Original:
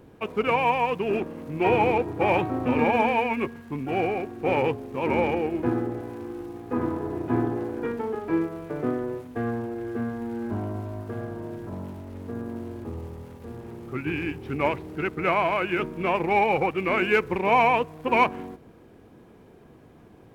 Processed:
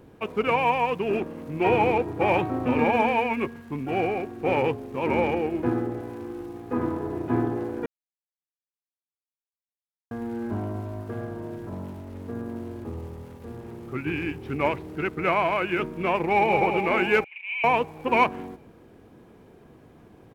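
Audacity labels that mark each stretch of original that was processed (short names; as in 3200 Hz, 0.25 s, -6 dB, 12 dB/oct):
7.860000	10.110000	mute
16.160000	16.580000	echo throw 0.21 s, feedback 65%, level -6 dB
17.240000	17.640000	Butterworth band-pass 2600 Hz, Q 3.4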